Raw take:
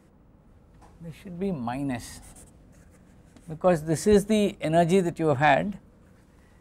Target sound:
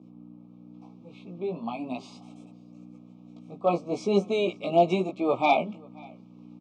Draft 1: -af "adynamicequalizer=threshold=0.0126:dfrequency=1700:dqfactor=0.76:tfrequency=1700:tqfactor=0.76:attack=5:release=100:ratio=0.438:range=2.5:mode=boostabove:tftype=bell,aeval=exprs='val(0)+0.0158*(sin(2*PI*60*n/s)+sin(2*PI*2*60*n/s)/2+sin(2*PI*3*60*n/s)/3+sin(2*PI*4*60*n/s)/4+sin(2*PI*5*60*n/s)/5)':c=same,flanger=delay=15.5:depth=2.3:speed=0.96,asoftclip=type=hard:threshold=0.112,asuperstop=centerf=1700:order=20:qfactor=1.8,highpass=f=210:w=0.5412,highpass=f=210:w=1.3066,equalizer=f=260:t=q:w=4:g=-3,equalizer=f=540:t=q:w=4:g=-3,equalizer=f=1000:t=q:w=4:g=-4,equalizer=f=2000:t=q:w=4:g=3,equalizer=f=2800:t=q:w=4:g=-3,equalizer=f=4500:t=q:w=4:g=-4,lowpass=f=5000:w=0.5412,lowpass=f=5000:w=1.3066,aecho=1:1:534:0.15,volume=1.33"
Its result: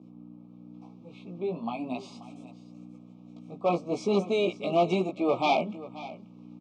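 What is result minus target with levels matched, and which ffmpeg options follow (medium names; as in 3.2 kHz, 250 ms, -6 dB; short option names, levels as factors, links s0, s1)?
hard clipper: distortion +15 dB; echo-to-direct +9.5 dB
-af "adynamicequalizer=threshold=0.0126:dfrequency=1700:dqfactor=0.76:tfrequency=1700:tqfactor=0.76:attack=5:release=100:ratio=0.438:range=2.5:mode=boostabove:tftype=bell,aeval=exprs='val(0)+0.0158*(sin(2*PI*60*n/s)+sin(2*PI*2*60*n/s)/2+sin(2*PI*3*60*n/s)/3+sin(2*PI*4*60*n/s)/4+sin(2*PI*5*60*n/s)/5)':c=same,flanger=delay=15.5:depth=2.3:speed=0.96,asoftclip=type=hard:threshold=0.237,asuperstop=centerf=1700:order=20:qfactor=1.8,highpass=f=210:w=0.5412,highpass=f=210:w=1.3066,equalizer=f=260:t=q:w=4:g=-3,equalizer=f=540:t=q:w=4:g=-3,equalizer=f=1000:t=q:w=4:g=-4,equalizer=f=2000:t=q:w=4:g=3,equalizer=f=2800:t=q:w=4:g=-3,equalizer=f=4500:t=q:w=4:g=-4,lowpass=f=5000:w=0.5412,lowpass=f=5000:w=1.3066,aecho=1:1:534:0.0501,volume=1.33"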